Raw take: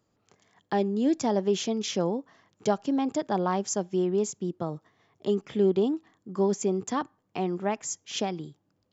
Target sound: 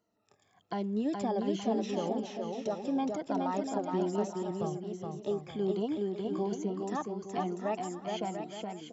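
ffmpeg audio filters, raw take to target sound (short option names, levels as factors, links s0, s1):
-filter_complex "[0:a]afftfilt=real='re*pow(10,14/40*sin(2*PI*(1.9*log(max(b,1)*sr/1024/100)/log(2)-(-1.2)*(pts-256)/sr)))':imag='im*pow(10,14/40*sin(2*PI*(1.9*log(max(b,1)*sr/1024/100)/log(2)-(-1.2)*(pts-256)/sr)))':win_size=1024:overlap=0.75,equalizer=f=690:t=o:w=0.39:g=6.5,acrossover=split=2600[s0][s1];[s0]alimiter=limit=0.168:level=0:latency=1:release=123[s2];[s1]acompressor=threshold=0.00708:ratio=6[s3];[s2][s3]amix=inputs=2:normalize=0,aecho=1:1:420|693|870.4|985.8|1061:0.631|0.398|0.251|0.158|0.1,volume=0.398"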